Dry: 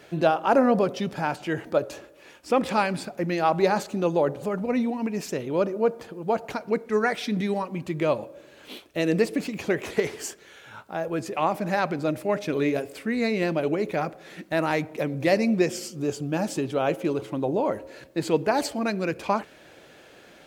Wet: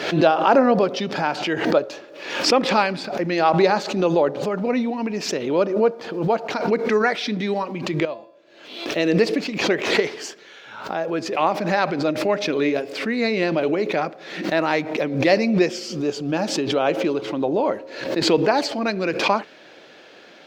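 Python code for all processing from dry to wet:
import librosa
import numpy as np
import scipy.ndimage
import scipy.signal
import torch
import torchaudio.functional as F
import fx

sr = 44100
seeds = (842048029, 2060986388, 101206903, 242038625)

y = fx.chain(x, sr, fx.peak_eq(hz=650.0, db=4.5, octaves=0.26),
    fx.comb_fb(f0_hz=340.0, decay_s=0.62, harmonics='all', damping=0.0, mix_pct=80), at=(8.05, 8.86))
y = scipy.signal.sosfilt(scipy.signal.butter(2, 210.0, 'highpass', fs=sr, output='sos'), y)
y = fx.high_shelf_res(y, sr, hz=6900.0, db=-12.5, q=1.5)
y = fx.pre_swell(y, sr, db_per_s=68.0)
y = y * 10.0 ** (4.0 / 20.0)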